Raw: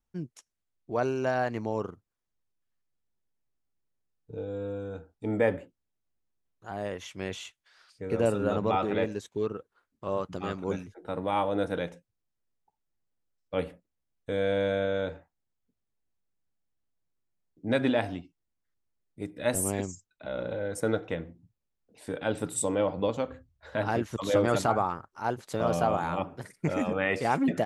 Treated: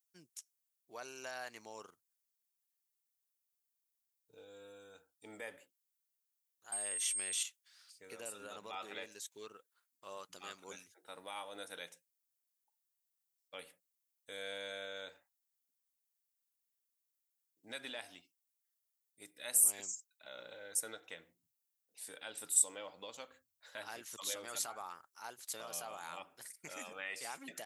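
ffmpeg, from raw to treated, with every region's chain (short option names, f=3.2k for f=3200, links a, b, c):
-filter_complex "[0:a]asettb=1/sr,asplit=3[a][b][c];[a]atrim=end=6.724[d];[b]atrim=start=6.72:end=7.43,asetpts=PTS-STARTPTS,afade=t=in:d=0.004:c=qsin,afade=t=out:st=0.706:d=0.004:c=qsin,acontrast=46,aeval=exprs='val(0)+0.00891*sin(2*PI*8500*n/s)':c=same,highpass=40[e];[c]atrim=start=7.426[f];[d][e]acrossfade=d=0.004:c1=hsin:c2=qsin[g];[g][f]acrossfade=d=0.004:c1=qsin:c2=hsin,highshelf=f=8k:g=4,alimiter=limit=-18.5dB:level=0:latency=1:release=199,aderivative,volume=3dB"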